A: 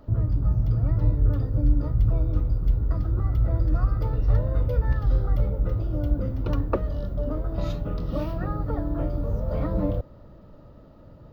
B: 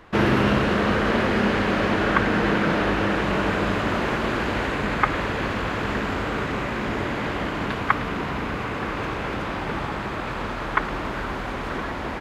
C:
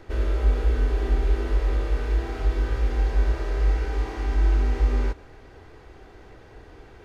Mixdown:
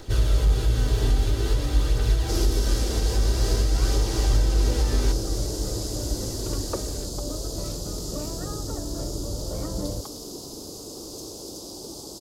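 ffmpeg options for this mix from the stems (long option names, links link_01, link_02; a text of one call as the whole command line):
ffmpeg -i stem1.wav -i stem2.wav -i stem3.wav -filter_complex "[0:a]volume=-5.5dB[link_01];[1:a]firequalizer=gain_entry='entry(200,0);entry(330,11);entry(1800,-28);entry(4900,14)':delay=0.05:min_phase=1,adelay=2150,volume=-16.5dB[link_02];[2:a]aphaser=in_gain=1:out_gain=1:delay=4.7:decay=0.31:speed=0.5:type=triangular,asoftclip=type=hard:threshold=-11.5dB,volume=0.5dB[link_03];[link_02][link_03]amix=inputs=2:normalize=0,aexciter=amount=5.9:drive=4.2:freq=3200,alimiter=limit=-14dB:level=0:latency=1:release=174,volume=0dB[link_04];[link_01][link_04]amix=inputs=2:normalize=0" out.wav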